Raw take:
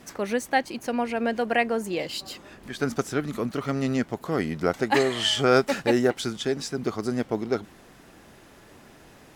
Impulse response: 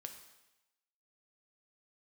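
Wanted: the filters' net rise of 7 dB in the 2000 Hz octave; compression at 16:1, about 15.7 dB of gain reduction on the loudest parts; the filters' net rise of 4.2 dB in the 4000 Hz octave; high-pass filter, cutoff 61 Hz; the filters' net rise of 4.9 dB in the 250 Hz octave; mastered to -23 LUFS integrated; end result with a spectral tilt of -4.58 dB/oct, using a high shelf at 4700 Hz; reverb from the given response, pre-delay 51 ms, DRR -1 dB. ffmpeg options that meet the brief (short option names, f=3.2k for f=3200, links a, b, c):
-filter_complex "[0:a]highpass=61,equalizer=f=250:t=o:g=5.5,equalizer=f=2k:t=o:g=8.5,equalizer=f=4k:t=o:g=4.5,highshelf=f=4.7k:g=-6,acompressor=threshold=-28dB:ratio=16,asplit=2[a][b];[1:a]atrim=start_sample=2205,adelay=51[c];[b][c]afir=irnorm=-1:irlink=0,volume=5.5dB[d];[a][d]amix=inputs=2:normalize=0,volume=6.5dB"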